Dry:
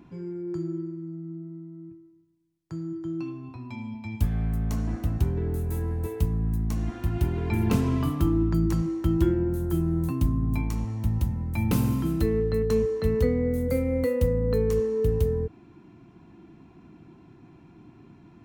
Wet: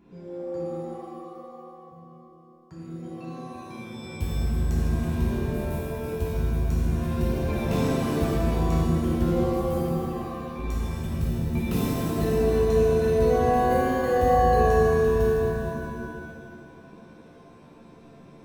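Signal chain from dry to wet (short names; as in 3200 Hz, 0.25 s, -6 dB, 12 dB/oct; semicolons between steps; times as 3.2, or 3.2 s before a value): 9.87–10.59 band-pass 1300 Hz, Q 1.3; shimmer reverb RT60 1.9 s, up +7 st, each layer -2 dB, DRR -6.5 dB; gain -8 dB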